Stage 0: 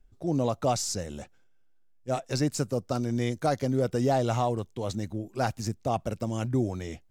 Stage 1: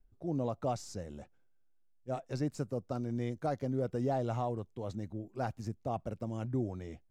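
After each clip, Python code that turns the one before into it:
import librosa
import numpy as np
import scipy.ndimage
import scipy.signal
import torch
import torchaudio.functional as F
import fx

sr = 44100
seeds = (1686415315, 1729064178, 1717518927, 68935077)

y = fx.high_shelf(x, sr, hz=2300.0, db=-11.5)
y = y * librosa.db_to_amplitude(-7.0)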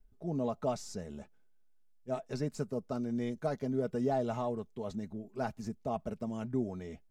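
y = x + 0.57 * np.pad(x, (int(4.7 * sr / 1000.0), 0))[:len(x)]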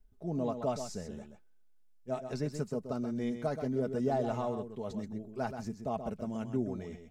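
y = x + 10.0 ** (-8.5 / 20.0) * np.pad(x, (int(129 * sr / 1000.0), 0))[:len(x)]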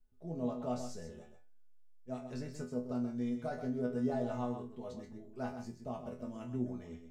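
y = fx.resonator_bank(x, sr, root=40, chord='fifth', decay_s=0.28)
y = y * librosa.db_to_amplitude(5.0)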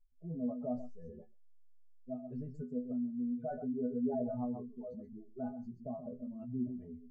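y = fx.spec_expand(x, sr, power=2.2)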